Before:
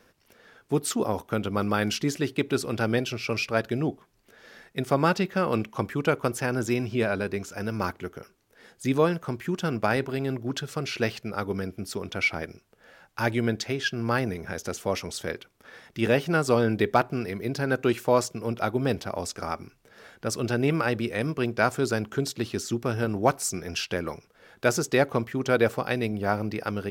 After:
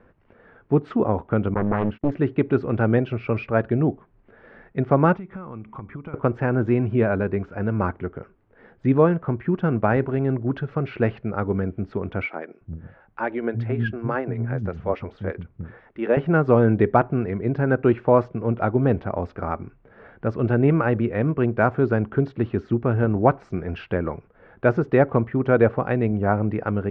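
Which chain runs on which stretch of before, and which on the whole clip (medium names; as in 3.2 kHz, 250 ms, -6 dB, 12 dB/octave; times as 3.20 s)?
1.54–2.12 s: gate -30 dBFS, range -31 dB + tape spacing loss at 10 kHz 31 dB + loudspeaker Doppler distortion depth 0.89 ms
5.15–6.14 s: band-stop 4.5 kHz, Q 7.4 + comb 0.9 ms, depth 42% + compression 10:1, threshold -38 dBFS
12.26–16.17 s: harmonic tremolo 8.3 Hz, depth 50%, crossover 1.8 kHz + bands offset in time highs, lows 350 ms, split 240 Hz
whole clip: Bessel low-pass 1.4 kHz, order 4; de-esser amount 95%; bass shelf 110 Hz +8 dB; trim +5 dB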